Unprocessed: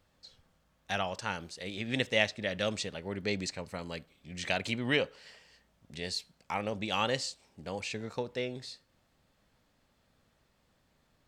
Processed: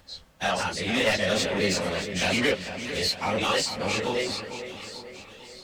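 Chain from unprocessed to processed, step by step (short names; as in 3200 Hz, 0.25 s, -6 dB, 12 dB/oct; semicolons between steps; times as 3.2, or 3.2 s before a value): spectral dilation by 0.12 s; bell 130 Hz -8.5 dB 0.29 oct; in parallel at -3 dB: compressor 4:1, threshold -36 dBFS, peak gain reduction 15.5 dB; on the sum: soft clip -21 dBFS, distortion -11 dB; plain phase-vocoder stretch 0.5×; on a send: split-band echo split 2500 Hz, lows 0.445 s, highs 0.624 s, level -10 dB; on the sum: gain +6.5 dB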